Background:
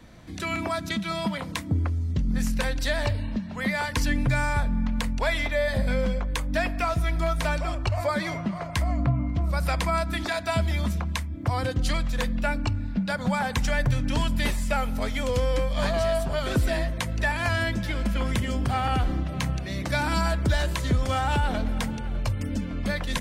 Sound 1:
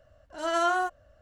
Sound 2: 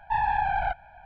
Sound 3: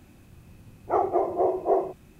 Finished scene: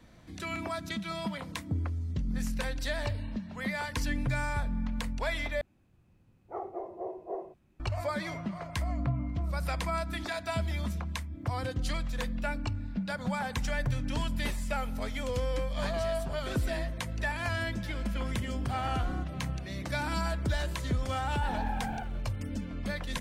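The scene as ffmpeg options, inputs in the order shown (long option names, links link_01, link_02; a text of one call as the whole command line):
ffmpeg -i bed.wav -i cue0.wav -i cue1.wav -i cue2.wav -filter_complex "[0:a]volume=-7dB[link_01];[3:a]aemphasis=mode=reproduction:type=cd[link_02];[1:a]alimiter=limit=-21dB:level=0:latency=1:release=71[link_03];[2:a]aeval=exprs='val(0)*gte(abs(val(0)),0.00562)':channel_layout=same[link_04];[link_01]asplit=2[link_05][link_06];[link_05]atrim=end=5.614[link_07];[link_02]atrim=end=2.19,asetpts=PTS-STARTPTS,volume=-15dB[link_08];[link_06]atrim=start=7.796[link_09];[link_03]atrim=end=1.21,asetpts=PTS-STARTPTS,volume=-14.5dB,afade=type=in:duration=0.004:curve=hsin,afade=type=out:start_time=1.206:duration=0.004:curve=hsin,adelay=18350[link_10];[link_04]atrim=end=1.05,asetpts=PTS-STARTPTS,volume=-12dB,afade=type=in:duration=0.004:curve=hsin,afade=type=out:start_time=1.046:duration=0.004:curve=hsin,adelay=21310[link_11];[link_07][link_08]acrossfade=duration=0.004:curve1=hsin:curve2=hsin[link_12];[link_12][link_09]acrossfade=duration=0.004:curve1=hsin:curve2=hsin[link_13];[link_13][link_10][link_11]amix=inputs=3:normalize=0" out.wav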